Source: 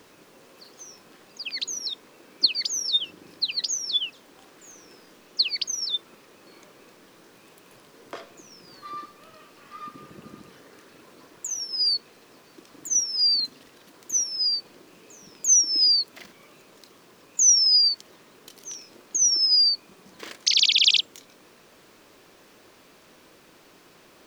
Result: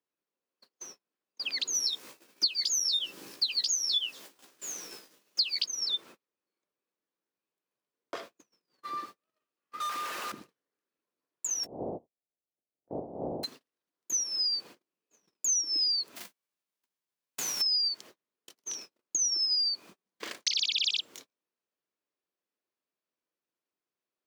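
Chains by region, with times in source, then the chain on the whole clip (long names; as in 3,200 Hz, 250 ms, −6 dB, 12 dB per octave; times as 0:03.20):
0:01.74–0:05.66: high-shelf EQ 3,800 Hz +11 dB + double-tracking delay 15 ms −3 dB
0:09.80–0:10.32: Chebyshev high-pass filter 950 Hz + leveller curve on the samples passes 5
0:11.63–0:13.43: compressing power law on the bin magnitudes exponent 0.22 + Butterworth low-pass 750 Hz 48 dB per octave + double-tracking delay 17 ms −13 dB
0:16.15–0:17.60: spectral envelope flattened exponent 0.3 + double-tracking delay 16 ms −10 dB + downward compressor 3 to 1, threshold −36 dBFS
whole clip: noise gate −44 dBFS, range −40 dB; downward compressor 4 to 1, threshold −28 dBFS; high-pass filter 210 Hz 6 dB per octave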